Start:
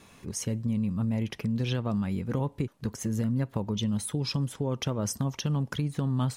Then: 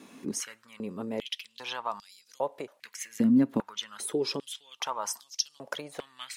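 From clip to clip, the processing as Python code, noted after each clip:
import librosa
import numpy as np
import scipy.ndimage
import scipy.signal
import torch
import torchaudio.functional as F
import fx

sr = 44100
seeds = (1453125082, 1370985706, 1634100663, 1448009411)

y = fx.filter_held_highpass(x, sr, hz=2.5, low_hz=260.0, high_hz=5000.0)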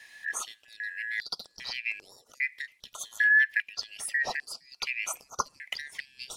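y = fx.band_shuffle(x, sr, order='4123')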